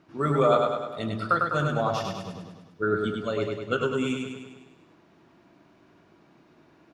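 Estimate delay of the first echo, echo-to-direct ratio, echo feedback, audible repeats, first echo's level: 101 ms, −2.0 dB, 57%, 7, −3.5 dB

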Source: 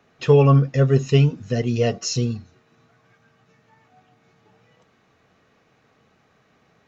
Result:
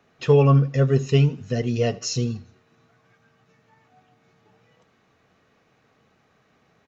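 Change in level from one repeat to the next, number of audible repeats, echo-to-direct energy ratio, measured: −7.5 dB, 2, −21.0 dB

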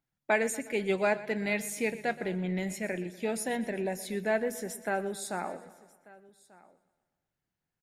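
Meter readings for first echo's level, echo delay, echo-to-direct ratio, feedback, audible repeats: −17.0 dB, 122 ms, −14.5 dB, repeats not evenly spaced, 5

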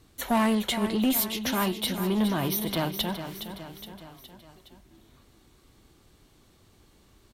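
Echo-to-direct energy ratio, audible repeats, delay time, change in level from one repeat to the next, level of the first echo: −8.5 dB, 4, 416 ms, −5.0 dB, −10.0 dB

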